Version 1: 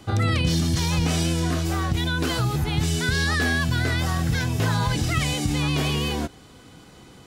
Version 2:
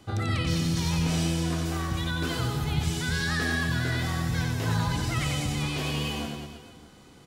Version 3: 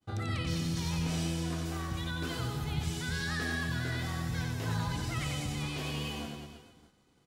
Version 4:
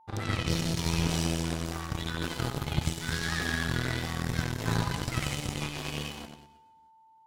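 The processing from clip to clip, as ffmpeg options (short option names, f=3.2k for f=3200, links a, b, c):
-af "aecho=1:1:90|193.5|312.5|449.4|606.8:0.631|0.398|0.251|0.158|0.1,volume=-7dB"
-af "agate=range=-33dB:threshold=-44dB:ratio=3:detection=peak,volume=-6.5dB"
-af "aeval=exprs='0.0841*(cos(1*acos(clip(val(0)/0.0841,-1,1)))-cos(1*PI/2))+0.015*(cos(3*acos(clip(val(0)/0.0841,-1,1)))-cos(3*PI/2))+0.0106*(cos(4*acos(clip(val(0)/0.0841,-1,1)))-cos(4*PI/2))+0.00422*(cos(6*acos(clip(val(0)/0.0841,-1,1)))-cos(6*PI/2))+0.00473*(cos(7*acos(clip(val(0)/0.0841,-1,1)))-cos(7*PI/2))':c=same,aeval=exprs='val(0)+0.000631*sin(2*PI*890*n/s)':c=same,volume=7.5dB"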